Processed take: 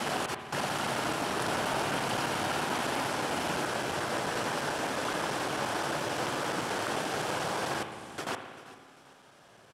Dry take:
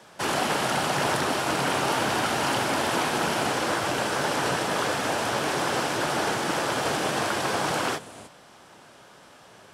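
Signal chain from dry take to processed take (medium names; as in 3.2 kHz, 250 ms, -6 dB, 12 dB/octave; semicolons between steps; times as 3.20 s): slices played last to first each 87 ms, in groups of 6; spring tank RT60 1.6 s, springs 56 ms, chirp 75 ms, DRR 6.5 dB; Chebyshev shaper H 7 -38 dB, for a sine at -11.5 dBFS; on a send: feedback delay 392 ms, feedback 38%, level -17.5 dB; on the sum: trim -6.5 dB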